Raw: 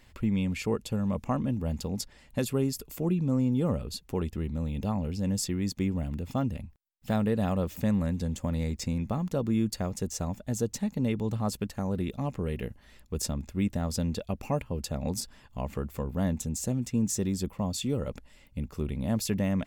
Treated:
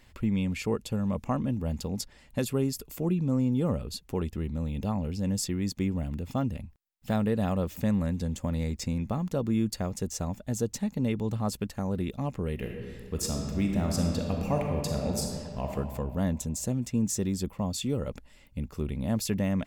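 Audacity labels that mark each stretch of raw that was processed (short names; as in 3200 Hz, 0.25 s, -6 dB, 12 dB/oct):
12.540000	15.710000	reverb throw, RT60 2.2 s, DRR 0.5 dB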